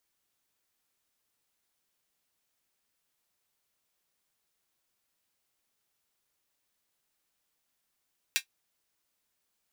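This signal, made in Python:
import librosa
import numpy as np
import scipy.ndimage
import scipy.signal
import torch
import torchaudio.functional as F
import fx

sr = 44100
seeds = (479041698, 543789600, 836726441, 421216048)

y = fx.drum_hat(sr, length_s=0.24, from_hz=2200.0, decay_s=0.1)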